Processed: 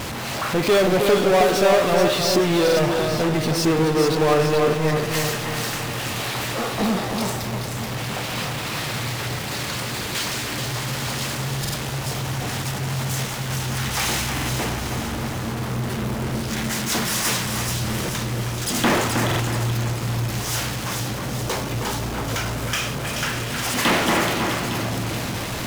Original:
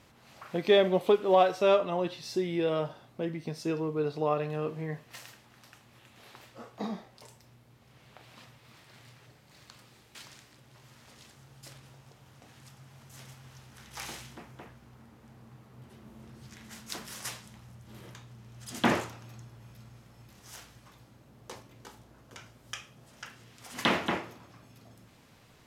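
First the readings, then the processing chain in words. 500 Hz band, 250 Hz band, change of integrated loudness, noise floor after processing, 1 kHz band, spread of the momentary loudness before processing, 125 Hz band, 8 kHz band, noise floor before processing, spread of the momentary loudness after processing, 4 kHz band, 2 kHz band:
+9.0 dB, +13.0 dB, +7.5 dB, -28 dBFS, +11.0 dB, 25 LU, +19.0 dB, +21.5 dB, -60 dBFS, 8 LU, +16.0 dB, +15.0 dB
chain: power-law curve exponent 0.35; split-band echo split 2700 Hz, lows 0.315 s, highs 0.43 s, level -5 dB; stuck buffer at 2.63/11.6/14.33/19.26, samples 2048, times 2

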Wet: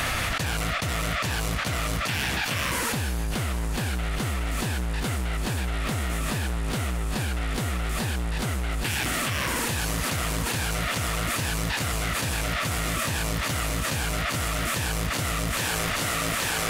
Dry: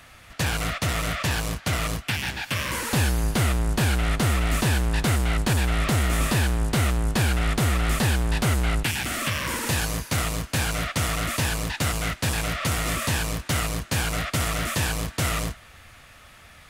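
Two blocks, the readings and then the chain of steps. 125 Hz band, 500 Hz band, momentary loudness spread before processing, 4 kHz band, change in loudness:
-4.0 dB, -1.5 dB, 4 LU, -0.5 dB, -2.5 dB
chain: thinning echo 0.829 s, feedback 64%, high-pass 190 Hz, level -9 dB; fast leveller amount 100%; gain -8 dB

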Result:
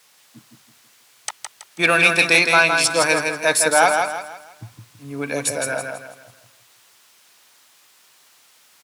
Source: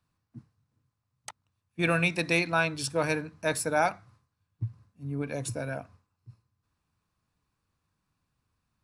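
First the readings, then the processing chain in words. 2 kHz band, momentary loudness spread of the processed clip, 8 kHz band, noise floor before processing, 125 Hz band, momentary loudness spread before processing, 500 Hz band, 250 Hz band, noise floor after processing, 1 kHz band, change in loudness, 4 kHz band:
+13.5 dB, 20 LU, +16.5 dB, -82 dBFS, -1.0 dB, 20 LU, +9.5 dB, +4.5 dB, -55 dBFS, +11.5 dB, +12.5 dB, +15.0 dB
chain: wow and flutter 20 cents; high shelf 9100 Hz +11.5 dB; in parallel at -8.5 dB: sine folder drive 5 dB, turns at -11 dBFS; on the sum: added noise white -59 dBFS; weighting filter A; on a send: feedback echo 0.163 s, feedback 37%, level -5 dB; on the sum: gain +5.5 dB

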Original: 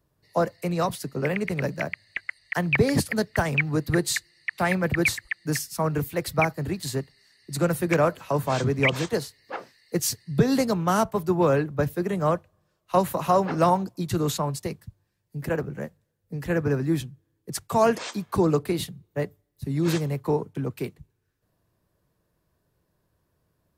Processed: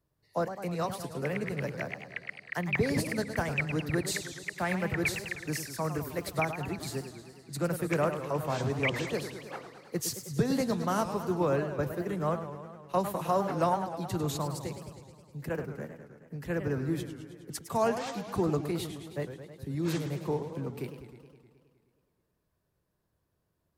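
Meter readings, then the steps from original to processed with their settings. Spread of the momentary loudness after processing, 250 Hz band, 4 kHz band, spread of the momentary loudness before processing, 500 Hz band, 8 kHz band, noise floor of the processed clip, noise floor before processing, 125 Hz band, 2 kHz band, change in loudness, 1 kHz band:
13 LU, -6.5 dB, -6.5 dB, 13 LU, -6.5 dB, -7.0 dB, -78 dBFS, -74 dBFS, -7.0 dB, -6.5 dB, -7.0 dB, -6.5 dB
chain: warbling echo 0.105 s, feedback 70%, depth 216 cents, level -10 dB; gain -7.5 dB

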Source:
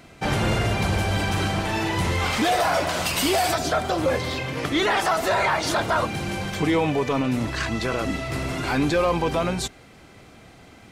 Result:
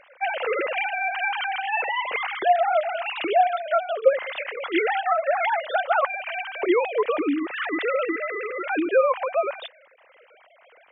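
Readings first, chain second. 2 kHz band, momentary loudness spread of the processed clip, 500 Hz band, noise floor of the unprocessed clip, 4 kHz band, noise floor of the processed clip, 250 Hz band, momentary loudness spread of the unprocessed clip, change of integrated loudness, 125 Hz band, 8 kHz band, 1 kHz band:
0.0 dB, 7 LU, +2.0 dB, -49 dBFS, -7.5 dB, -55 dBFS, -5.0 dB, 6 LU, -0.5 dB, under -40 dB, under -40 dB, +1.0 dB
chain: sine-wave speech; vocal rider within 3 dB 0.5 s

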